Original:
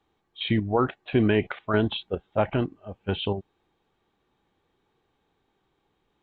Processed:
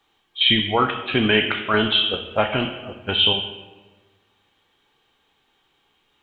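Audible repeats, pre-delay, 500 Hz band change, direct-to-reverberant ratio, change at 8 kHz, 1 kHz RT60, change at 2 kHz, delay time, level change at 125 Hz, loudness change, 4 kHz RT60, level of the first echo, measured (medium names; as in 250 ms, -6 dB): no echo, 4 ms, +2.5 dB, 2.5 dB, no reading, 1.3 s, +11.0 dB, no echo, -1.5 dB, +7.0 dB, 0.80 s, no echo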